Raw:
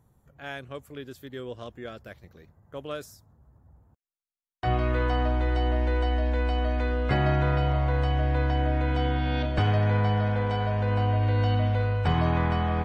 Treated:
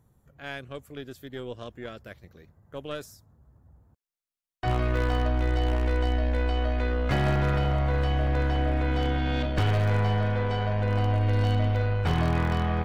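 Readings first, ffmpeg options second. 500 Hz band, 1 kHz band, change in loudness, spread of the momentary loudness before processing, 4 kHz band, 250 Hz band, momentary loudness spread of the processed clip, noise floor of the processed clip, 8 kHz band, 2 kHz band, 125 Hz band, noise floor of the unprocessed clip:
-0.5 dB, -2.0 dB, -0.5 dB, 16 LU, +0.5 dB, -0.5 dB, 16 LU, under -85 dBFS, n/a, 0.0 dB, -0.5 dB, under -85 dBFS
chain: -af "equalizer=f=860:w=1.9:g=-3,aeval=exprs='0.133*(abs(mod(val(0)/0.133+3,4)-2)-1)':c=same,aeval=exprs='0.133*(cos(1*acos(clip(val(0)/0.133,-1,1)))-cos(1*PI/2))+0.0133*(cos(2*acos(clip(val(0)/0.133,-1,1)))-cos(2*PI/2))+0.00668*(cos(6*acos(clip(val(0)/0.133,-1,1)))-cos(6*PI/2))':c=same"

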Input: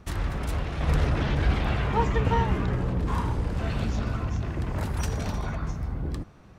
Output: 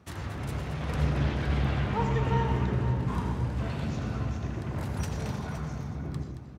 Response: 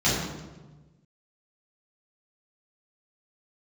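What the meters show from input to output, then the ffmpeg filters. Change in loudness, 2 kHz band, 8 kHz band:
-3.0 dB, -4.0 dB, n/a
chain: -filter_complex "[0:a]highpass=f=74:w=0.5412,highpass=f=74:w=1.3066,aecho=1:1:224|517:0.299|0.282,asplit=2[a][b];[1:a]atrim=start_sample=2205,afade=t=out:st=0.14:d=0.01,atrim=end_sample=6615,adelay=77[c];[b][c]afir=irnorm=-1:irlink=0,volume=-20.5dB[d];[a][d]amix=inputs=2:normalize=0,volume=-5.5dB"

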